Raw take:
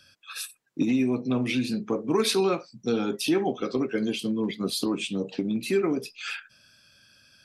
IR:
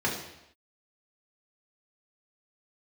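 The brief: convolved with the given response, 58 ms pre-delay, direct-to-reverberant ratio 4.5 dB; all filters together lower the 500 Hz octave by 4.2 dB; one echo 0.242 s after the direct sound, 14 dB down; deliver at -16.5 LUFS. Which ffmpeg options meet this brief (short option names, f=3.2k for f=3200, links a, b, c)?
-filter_complex "[0:a]equalizer=f=500:t=o:g=-6,aecho=1:1:242:0.2,asplit=2[a][b];[1:a]atrim=start_sample=2205,adelay=58[c];[b][c]afir=irnorm=-1:irlink=0,volume=-15dB[d];[a][d]amix=inputs=2:normalize=0,volume=10.5dB"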